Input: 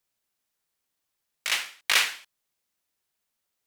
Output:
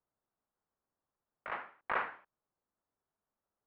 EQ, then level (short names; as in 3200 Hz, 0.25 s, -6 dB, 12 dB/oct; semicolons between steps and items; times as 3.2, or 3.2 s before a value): LPF 1300 Hz 24 dB/oct; 0.0 dB